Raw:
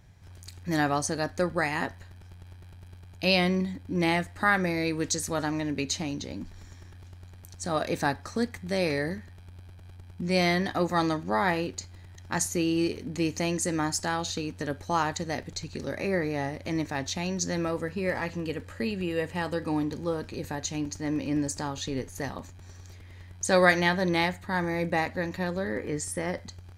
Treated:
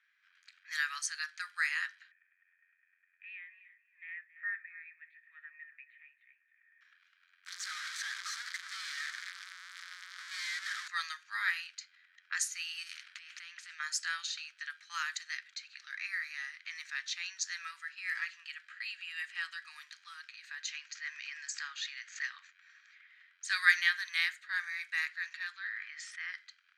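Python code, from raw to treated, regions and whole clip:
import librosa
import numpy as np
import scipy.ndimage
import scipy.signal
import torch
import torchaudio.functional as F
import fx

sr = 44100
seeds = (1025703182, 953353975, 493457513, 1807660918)

y = fx.chain(x, sr, fx.formant_cascade(vowel='e'),
    fx.echo_feedback(ms=272, feedback_pct=15, wet_db=-16.0),
    fx.band_squash(depth_pct=40), at=(2.11, 6.81))
y = fx.chain(y, sr, fx.clip_1bit(),
    fx.peak_eq(hz=2700.0, db=-13.0, octaves=0.38),
    fx.notch(hz=1400.0, q=28.0), at=(7.46, 10.88))
y = fx.chain(y, sr, fx.over_compress(threshold_db=-33.0, ratio=-1.0),
    fx.spectral_comp(ratio=2.0), at=(12.83, 13.8))
y = fx.chain(y, sr, fx.brickwall_lowpass(high_hz=8100.0),
    fx.peak_eq(hz=1900.0, db=4.5, octaves=1.1),
    fx.pre_swell(db_per_s=88.0), at=(20.68, 23.07))
y = fx.chain(y, sr, fx.lowpass(hz=4900.0, slope=12),
    fx.low_shelf(hz=350.0, db=-10.5),
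    fx.sustainer(db_per_s=22.0), at=(25.52, 26.33))
y = fx.env_lowpass(y, sr, base_hz=2200.0, full_db=-22.0)
y = scipy.signal.sosfilt(scipy.signal.butter(8, 1400.0, 'highpass', fs=sr, output='sos'), y)
y = fx.high_shelf(y, sr, hz=4600.0, db=-5.0)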